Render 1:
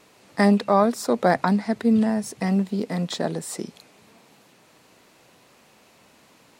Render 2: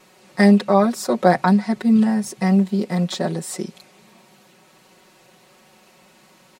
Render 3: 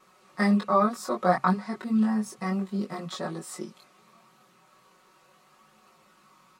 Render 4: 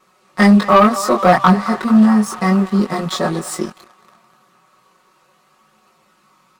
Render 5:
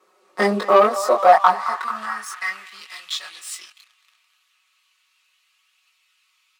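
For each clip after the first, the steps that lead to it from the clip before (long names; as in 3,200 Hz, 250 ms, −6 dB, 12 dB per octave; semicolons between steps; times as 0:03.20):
comb filter 5.4 ms, depth 96%
parametric band 1,200 Hz +14.5 dB 0.38 octaves; multi-voice chorus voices 2, 0.34 Hz, delay 21 ms, depth 2.4 ms; level −7 dB
feedback echo with a band-pass in the loop 218 ms, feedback 81%, band-pass 1,200 Hz, level −15 dB; leveller curve on the samples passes 2; level +7 dB
high-pass filter sweep 400 Hz → 2,700 Hz, 0:00.69–0:02.90; level −6 dB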